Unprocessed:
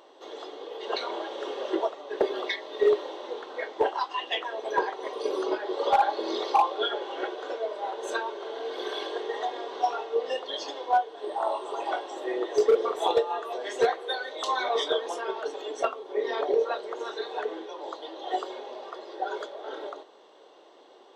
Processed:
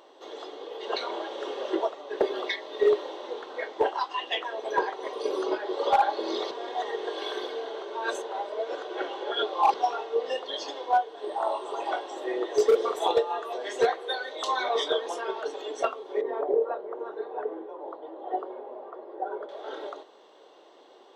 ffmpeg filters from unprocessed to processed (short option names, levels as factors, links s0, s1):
-filter_complex "[0:a]asettb=1/sr,asplit=3[s0][s1][s2];[s0]atrim=end=12.594[s3];[s1]atrim=start=12.59:end=12.99,asetpts=PTS-STARTPTS,afade=t=in:d=0.004:c=qsin,afade=t=out:st=0.396:d=0.004:c=qsin,highshelf=f=5300:g=9.5[s4];[s2]atrim=start=12.986[s5];[s3][s4]acrossfade=d=0.004:c1=hsin:c2=qsin[s6];[s6][s5]acrossfade=d=0.004:c1=qsin:c2=hsin,asettb=1/sr,asplit=3[s7][s8][s9];[s7]atrim=end=16.214[s10];[s8]atrim=start=16.21:end=19.49,asetpts=PTS-STARTPTS,afade=t=in:d=0.004:c=qsin,afade=t=out:st=3.276:d=0.004:c=qsin,lowpass=1000[s11];[s9]atrim=start=19.486[s12];[s10][s11]acrossfade=d=0.004:c1=hsin:c2=qsin[s13];[s13][s12]acrossfade=d=0.004:c1=qsin:c2=hsin,asplit=3[s14][s15][s16];[s14]atrim=end=6.512[s17];[s15]atrim=start=6.508:end=9.742,asetpts=PTS-STARTPTS,areverse[s18];[s16]atrim=start=9.738[s19];[s17][s18]acrossfade=d=0.004:c1=hsin:c2=hsin[s20];[s20][s19]acrossfade=d=0.004:c1=hsin:c2=hsin"